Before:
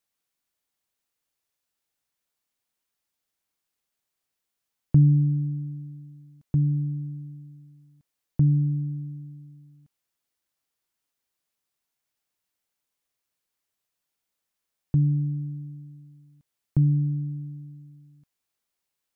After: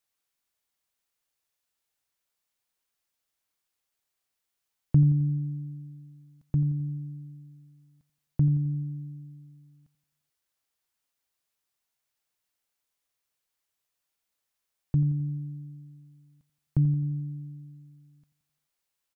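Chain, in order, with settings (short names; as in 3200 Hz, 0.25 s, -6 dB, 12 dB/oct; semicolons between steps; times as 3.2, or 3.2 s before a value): bell 230 Hz -4 dB 1.9 oct; feedback echo 87 ms, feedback 55%, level -14.5 dB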